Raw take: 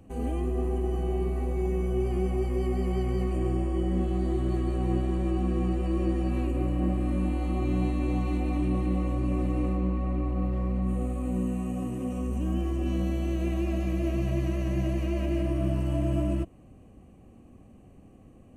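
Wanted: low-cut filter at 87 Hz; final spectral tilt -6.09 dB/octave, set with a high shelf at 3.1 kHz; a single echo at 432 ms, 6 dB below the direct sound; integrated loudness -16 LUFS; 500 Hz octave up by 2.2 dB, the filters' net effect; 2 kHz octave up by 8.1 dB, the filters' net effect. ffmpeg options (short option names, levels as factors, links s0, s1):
-af "highpass=87,equalizer=f=500:t=o:g=3,equalizer=f=2000:t=o:g=7.5,highshelf=f=3100:g=6,aecho=1:1:432:0.501,volume=4.22"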